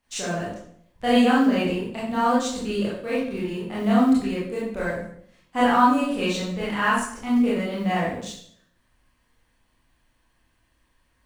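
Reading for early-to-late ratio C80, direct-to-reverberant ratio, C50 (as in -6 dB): 6.0 dB, -8.5 dB, 0.5 dB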